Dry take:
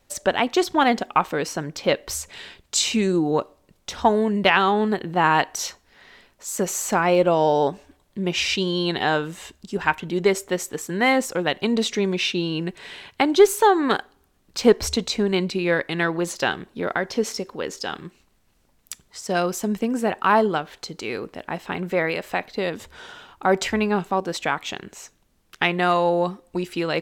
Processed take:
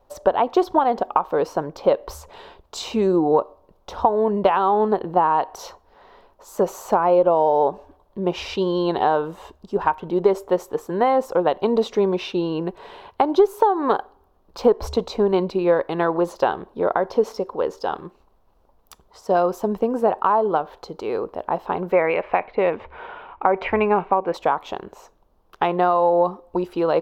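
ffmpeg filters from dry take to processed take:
-filter_complex "[0:a]asettb=1/sr,asplit=3[a][b][c];[a]atrim=end=21.924[d];[b]atrim=start=21.92:end=24.34,asetpts=PTS-STARTPTS,afade=t=in:d=0.004:c=qsin,afade=t=out:st=2.416:d=0.004:c=qsin,lowpass=f=2.3k:t=q:w=6.1[e];[c]atrim=start=24.336[f];[d][e]acrossfade=d=0.004:c1=hsin:c2=qsin[g];[g][f]acrossfade=d=0.004:c1=qsin:c2=hsin,equalizer=f=125:t=o:w=1:g=-9,equalizer=f=250:t=o:w=1:g=-6,equalizer=f=500:t=o:w=1:g=4,equalizer=f=1k:t=o:w=1:g=10,equalizer=f=2k:t=o:w=1:g=-9,equalizer=f=8k:t=o:w=1:g=-11,acompressor=threshold=-15dB:ratio=12,tiltshelf=f=1.1k:g=5.5"

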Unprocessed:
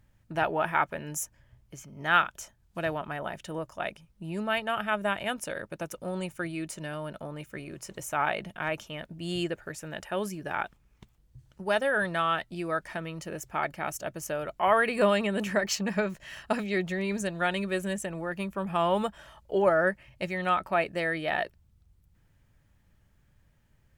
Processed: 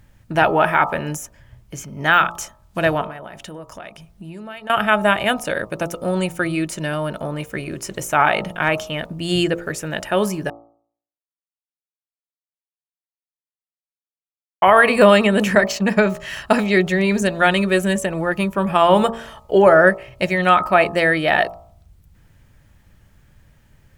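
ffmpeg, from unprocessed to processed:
-filter_complex "[0:a]asettb=1/sr,asplit=3[a][b][c];[a]atrim=end=3.064[d];[b]atrim=start=3.06:end=4.7,asetpts=PTS-STARTPTS,afade=t=in:d=0.004:c=qsin,afade=t=out:st=1.636:d=0.004:c=qsin,acompressor=threshold=-45dB:ratio=6:attack=3.2:release=140:knee=1:detection=peak[e];[c]atrim=start=4.696[f];[d][e]acrossfade=d=0.004:c1=hsin:c2=qsin[g];[g][f]acrossfade=d=0.004:c1=qsin:c2=hsin,asettb=1/sr,asplit=3[h][i][j];[h]atrim=end=15.554[k];[i]atrim=start=15.55:end=16,asetpts=PTS-STARTPTS,afade=t=in:d=0.004:c=qsin,afade=t=out:st=0.446:d=0.004:c=qsin,agate=range=-33dB:threshold=-30dB:ratio=3:release=100:detection=peak[l];[j]atrim=start=15.996[m];[k][l]acrossfade=d=0.004:c1=hsin:c2=qsin[n];[n][m]acrossfade=d=0.004:c1=qsin:c2=hsin,asplit=3[o][p][q];[o]atrim=end=10.5,asetpts=PTS-STARTPTS,afade=t=out:st=10.496:d=0.004:c=hsin[r];[p]atrim=start=10.5:end=14.62,asetpts=PTS-STARTPTS,volume=0[s];[q]atrim=start=14.62,asetpts=PTS-STARTPTS,afade=t=in:d=0.004:c=hsin[t];[r][s][t]concat=n=3:v=0:a=1,bandreject=f=57.05:t=h:w=4,bandreject=f=114.1:t=h:w=4,bandreject=f=171.15:t=h:w=4,bandreject=f=228.2:t=h:w=4,bandreject=f=285.25:t=h:w=4,bandreject=f=342.3:t=h:w=4,bandreject=f=399.35:t=h:w=4,bandreject=f=456.4:t=h:w=4,bandreject=f=513.45:t=h:w=4,bandreject=f=570.5:t=h:w=4,bandreject=f=627.55:t=h:w=4,bandreject=f=684.6:t=h:w=4,bandreject=f=741.65:t=h:w=4,bandreject=f=798.7:t=h:w=4,bandreject=f=855.75:t=h:w=4,bandreject=f=912.8:t=h:w=4,bandreject=f=969.85:t=h:w=4,bandreject=f=1.0269k:t=h:w=4,bandreject=f=1.08395k:t=h:w=4,bandreject=f=1.141k:t=h:w=4,bandreject=f=1.19805k:t=h:w=4,bandreject=f=1.2551k:t=h:w=4,bandreject=f=1.31215k:t=h:w=4,deesser=0.75,alimiter=level_in=14dB:limit=-1dB:release=50:level=0:latency=1,volume=-1dB"

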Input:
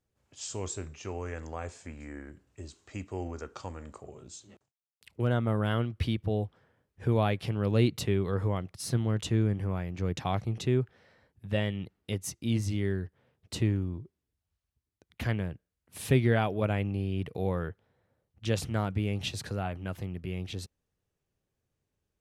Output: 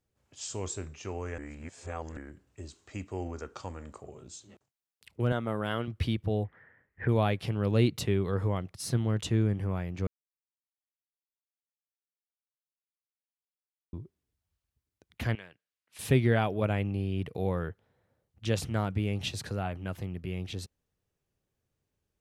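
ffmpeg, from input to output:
-filter_complex "[0:a]asettb=1/sr,asplit=3[a][b][c];[a]atrim=end=5.324[d];[b]atrim=start=5.32:end=5.88,asetpts=PTS-STARTPTS,afade=t=in:d=0.004:c=qsin,afade=t=out:st=0.556:d=0.004:c=qsin,highpass=f=270:p=1[e];[c]atrim=start=5.876[f];[d][e]acrossfade=d=0.004:c1=hsin:c2=qsin[g];[g][f]acrossfade=d=0.004:c1=qsin:c2=hsin,asplit=3[h][i][j];[h]afade=t=out:st=6.43:d=0.02[k];[i]lowpass=f=1.9k:t=q:w=9.7,afade=t=in:st=6.43:d=0.02,afade=t=out:st=7.07:d=0.02[l];[j]afade=t=in:st=7.07:d=0.02[m];[k][l][m]amix=inputs=3:normalize=0,asettb=1/sr,asplit=3[n][o][p];[n]atrim=end=15.354[q];[o]atrim=start=15.35:end=15.99,asetpts=PTS-STARTPTS,afade=t=in:d=0.004:c=qsin,afade=t=out:st=0.636:d=0.004:c=qsin,bandpass=f=2.9k:t=q:w=0.74[r];[p]atrim=start=15.986[s];[q][r]acrossfade=d=0.004:c1=hsin:c2=qsin[t];[t][s]acrossfade=d=0.004:c1=qsin:c2=hsin,asplit=5[u][v][w][x][y];[u]atrim=end=1.382[z];[v]atrim=start=1.378:end=2.172,asetpts=PTS-STARTPTS,areverse[aa];[w]atrim=start=2.168:end=10.07,asetpts=PTS-STARTPTS,afade=t=out:st=7.898:d=0.004:c=hsin[ab];[x]atrim=start=10.07:end=13.93,asetpts=PTS-STARTPTS,volume=0[ac];[y]atrim=start=13.93,asetpts=PTS-STARTPTS,afade=t=in:d=0.004:c=hsin[ad];[z][aa]acrossfade=d=0.004:c1=hsin:c2=hsin[ae];[ab][ac][ad]concat=n=3:v=0:a=1[af];[ae][af]acrossfade=d=0.004:c1=hsin:c2=hsin"

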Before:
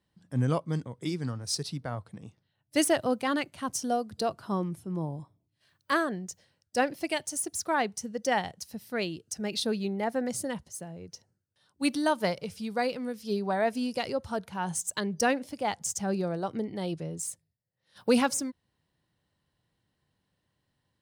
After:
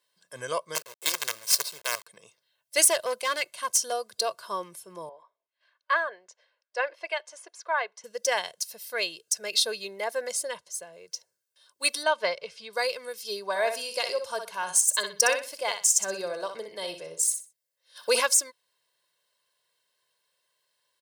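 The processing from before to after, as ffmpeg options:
-filter_complex "[0:a]asettb=1/sr,asplit=3[a][b][c];[a]atrim=end=0.754[d];[b]atrim=start=0.75:end=2.07,asetpts=PTS-STARTPTS,afade=t=in:d=0.004:c=qsin,afade=t=out:st=1.316:d=0.004:c=qsin,acrusher=bits=5:dc=4:mix=0:aa=0.000001[e];[c]atrim=start=2.066[f];[d][e]acrossfade=d=0.004:c1=hsin:c2=qsin[g];[g][f]acrossfade=d=0.004:c1=qsin:c2=hsin,asettb=1/sr,asplit=3[h][i][j];[h]atrim=end=2.904[k];[i]atrim=start=2.9:end=3.92,asetpts=PTS-STARTPTS,afade=t=in:d=0.004:c=qsin,afade=t=out:st=1.016:d=0.004:c=qsin,aeval=exprs='clip(val(0),-1,0.0473)':c=same[l];[j]atrim=start=3.916[m];[k][l]acrossfade=d=0.004:c1=hsin:c2=qsin[n];[n][m]acrossfade=d=0.004:c1=qsin:c2=hsin,asettb=1/sr,asplit=3[o][p][q];[o]atrim=end=5.094[r];[p]atrim=start=5.09:end=8.04,asetpts=PTS-STARTPTS,afade=t=in:d=0.004:c=qsin,afade=t=out:st=2.946:d=0.004:c=qsin,highpass=560,lowpass=2k[s];[q]atrim=start=8.036[t];[r][s]acrossfade=d=0.004:c1=hsin:c2=qsin[u];[u][t]acrossfade=d=0.004:c1=qsin:c2=hsin,asettb=1/sr,asplit=3[v][w][x];[v]atrim=end=10.324[y];[w]atrim=start=10.32:end=10.93,asetpts=PTS-STARTPTS,afade=t=in:d=0.004:c=qsin,afade=t=out:st=0.606:d=0.004:c=qsin,highshelf=f=8.6k:g=-10[z];[x]atrim=start=10.926[aa];[y][z]acrossfade=d=0.004:c1=hsin:c2=qsin[ab];[ab][aa]acrossfade=d=0.004:c1=qsin:c2=hsin,asettb=1/sr,asplit=3[ac][ad][ae];[ac]atrim=end=12.034[af];[ad]atrim=start=12.03:end=12.73,asetpts=PTS-STARTPTS,afade=t=in:d=0.004:c=qsin,afade=t=out:st=0.696:d=0.004:c=qsin,lowpass=3.5k[ag];[ae]atrim=start=12.726[ah];[af][ag]acrossfade=d=0.004:c1=hsin:c2=qsin[ai];[ai][ah]acrossfade=d=0.004:c1=qsin:c2=hsin,asettb=1/sr,asplit=3[aj][ak][al];[aj]atrim=end=13.494[am];[ak]atrim=start=13.49:end=18.2,asetpts=PTS-STARTPTS,afade=t=in:d=0.004:c=qsin,afade=t=out:st=4.706:d=0.004:c=qsin,aecho=1:1:62|124|186:0.398|0.0955|0.0229,atrim=end_sample=207711[an];[al]atrim=start=18.196[ao];[am][an]acrossfade=d=0.004:c1=hsin:c2=qsin[ap];[ap][ao]acrossfade=d=0.004:c1=qsin:c2=hsin,highpass=560,highshelf=f=2.8k:g=10,aecho=1:1:1.9:0.73"

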